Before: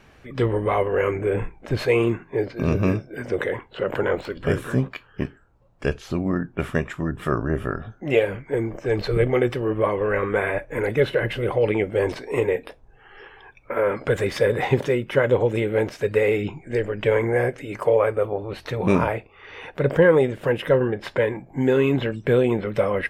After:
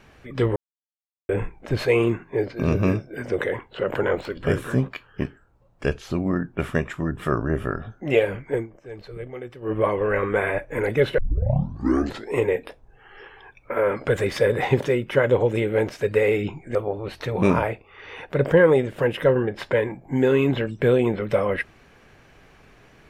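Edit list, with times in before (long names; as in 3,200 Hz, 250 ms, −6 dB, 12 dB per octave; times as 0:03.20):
0:00.56–0:01.29: silence
0:08.55–0:09.73: duck −15.5 dB, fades 0.12 s
0:11.18: tape start 1.15 s
0:16.75–0:18.20: remove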